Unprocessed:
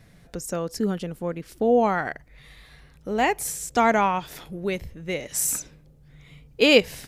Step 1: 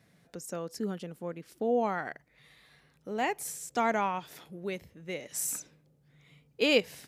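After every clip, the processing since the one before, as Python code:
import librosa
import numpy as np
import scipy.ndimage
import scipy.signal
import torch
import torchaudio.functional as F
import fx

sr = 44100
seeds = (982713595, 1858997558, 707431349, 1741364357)

y = scipy.signal.sosfilt(scipy.signal.butter(2, 140.0, 'highpass', fs=sr, output='sos'), x)
y = y * librosa.db_to_amplitude(-8.5)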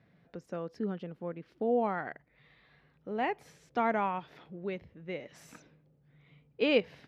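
y = fx.air_absorb(x, sr, metres=300.0)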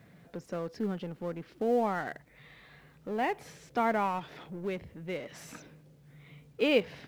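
y = fx.law_mismatch(x, sr, coded='mu')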